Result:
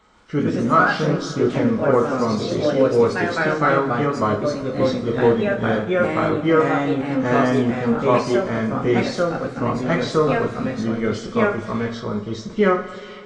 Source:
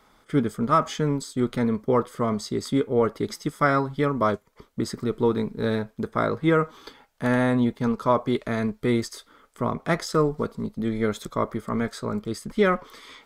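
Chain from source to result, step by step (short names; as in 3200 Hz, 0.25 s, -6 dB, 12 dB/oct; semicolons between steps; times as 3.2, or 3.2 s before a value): nonlinear frequency compression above 2400 Hz 1.5:1; two-slope reverb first 0.33 s, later 2.9 s, from -18 dB, DRR 0 dB; echoes that change speed 0.143 s, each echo +2 st, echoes 2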